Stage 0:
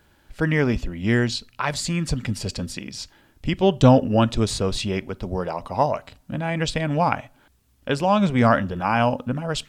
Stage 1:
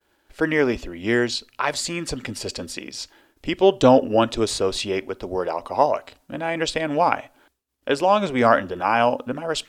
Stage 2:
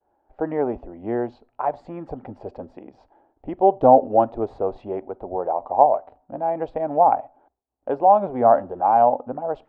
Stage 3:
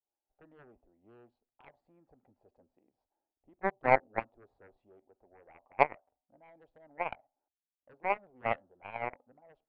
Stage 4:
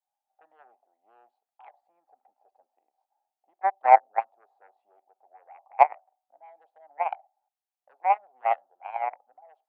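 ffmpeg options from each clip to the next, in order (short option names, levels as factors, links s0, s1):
-af "agate=range=0.0224:threshold=0.00251:ratio=3:detection=peak,lowshelf=f=240:t=q:w=1.5:g=-10,volume=1.19"
-af "lowpass=f=770:t=q:w=4.9,volume=0.501"
-af "aeval=exprs='0.891*(cos(1*acos(clip(val(0)/0.891,-1,1)))-cos(1*PI/2))+0.316*(cos(3*acos(clip(val(0)/0.891,-1,1)))-cos(3*PI/2))+0.0355*(cos(4*acos(clip(val(0)/0.891,-1,1)))-cos(4*PI/2))+0.0141*(cos(6*acos(clip(val(0)/0.891,-1,1)))-cos(6*PI/2))':c=same,volume=0.447"
-af "highpass=f=770:t=q:w=5.9,volume=0.794"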